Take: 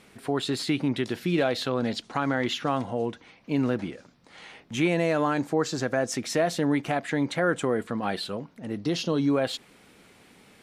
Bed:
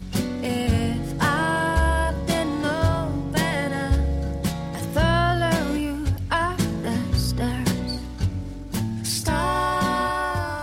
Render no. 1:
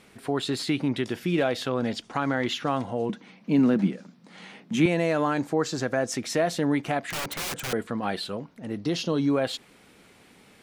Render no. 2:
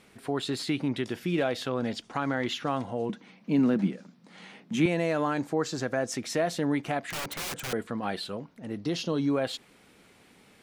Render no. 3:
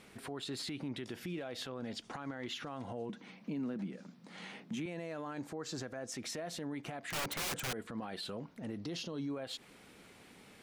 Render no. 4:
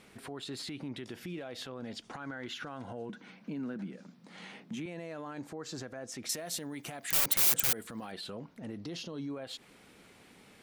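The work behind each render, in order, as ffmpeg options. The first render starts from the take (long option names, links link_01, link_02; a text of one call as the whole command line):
ffmpeg -i in.wav -filter_complex "[0:a]asettb=1/sr,asplit=3[link_01][link_02][link_03];[link_01]atrim=end=1.054[link_04];[link_02]atrim=start=1.05:end=2.14,asetpts=PTS-STARTPTS,afade=type=in:duration=0.004:curve=qsin,afade=type=out:start_time=1.086:duration=0.004:curve=qsin,bandreject=frequency=4100:width=8.1[link_05];[link_03]atrim=start=2.136[link_06];[link_04][link_05]acrossfade=duration=0.004:curve1=hsin:curve2=qsin[link_07];[link_07][link_06]acrossfade=duration=0.004:curve1=qsin:curve2=hsin,asettb=1/sr,asplit=3[link_08][link_09][link_10];[link_08]atrim=end=3.094[link_11];[link_09]atrim=start=3.09:end=4.86,asetpts=PTS-STARTPTS,afade=type=in:duration=0.004:curve=qsin,afade=type=out:start_time=1.766:duration=0.004:curve=qsin,highpass=frequency=190:width_type=q:width=4.9[link_12];[link_10]atrim=start=4.856[link_13];[link_11][link_12]acrossfade=duration=0.004:curve1=hsin:curve2=qsin[link_14];[link_14][link_13]acrossfade=duration=0.004:curve1=qsin:curve2=hsin,asettb=1/sr,asplit=3[link_15][link_16][link_17];[link_15]atrim=end=7.104[link_18];[link_16]atrim=start=7.1:end=7.73,asetpts=PTS-STARTPTS,afade=type=in:duration=0.004:curve=qsin,afade=type=out:start_time=0.626:duration=0.004:curve=qsin,aeval=exprs='(mod(21.1*val(0)+1,2)-1)/21.1':channel_layout=same[link_19];[link_17]atrim=start=7.726[link_20];[link_18][link_19]acrossfade=duration=0.004:curve1=hsin:curve2=qsin[link_21];[link_21][link_20]acrossfade=duration=0.004:curve1=qsin:curve2=hsin" out.wav
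ffmpeg -i in.wav -af "volume=-3dB" out.wav
ffmpeg -i in.wav -af "acompressor=threshold=-34dB:ratio=3,alimiter=level_in=8dB:limit=-24dB:level=0:latency=1:release=79,volume=-8dB" out.wav
ffmpeg -i in.wav -filter_complex "[0:a]asettb=1/sr,asplit=3[link_01][link_02][link_03];[link_01]atrim=end=2.204[link_04];[link_02]atrim=start=2.2:end=3.92,asetpts=PTS-STARTPTS,afade=type=in:duration=0.004:curve=qsin,afade=type=out:start_time=1.716:duration=0.004:curve=qsin,equalizer=frequency=1500:width=6.8:gain=9.5[link_05];[link_03]atrim=start=3.916[link_06];[link_04][link_05]acrossfade=duration=0.004:curve1=hsin:curve2=qsin[link_07];[link_07][link_06]acrossfade=duration=0.004:curve1=qsin:curve2=hsin,asettb=1/sr,asplit=3[link_08][link_09][link_10];[link_08]atrim=end=6.294[link_11];[link_09]atrim=start=6.29:end=8.12,asetpts=PTS-STARTPTS,afade=type=in:duration=0.004:curve=qsin,afade=type=out:start_time=1.826:duration=0.004:curve=qsin,aemphasis=mode=production:type=75fm[link_12];[link_10]atrim=start=8.116[link_13];[link_11][link_12]acrossfade=duration=0.004:curve1=hsin:curve2=qsin[link_14];[link_14][link_13]acrossfade=duration=0.004:curve1=qsin:curve2=hsin" out.wav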